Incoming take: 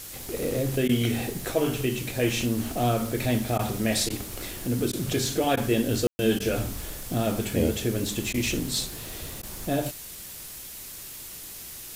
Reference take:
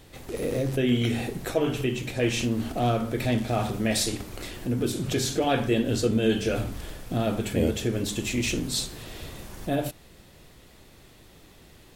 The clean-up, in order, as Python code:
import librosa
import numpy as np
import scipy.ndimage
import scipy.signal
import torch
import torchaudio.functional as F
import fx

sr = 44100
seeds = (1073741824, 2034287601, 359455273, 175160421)

y = fx.fix_ambience(x, sr, seeds[0], print_start_s=9.94, print_end_s=10.44, start_s=6.07, end_s=6.19)
y = fx.fix_interpolate(y, sr, at_s=(0.88, 3.58, 4.09, 4.92, 5.56, 6.39, 8.33, 9.42), length_ms=10.0)
y = fx.noise_reduce(y, sr, print_start_s=9.94, print_end_s=10.44, reduce_db=11.0)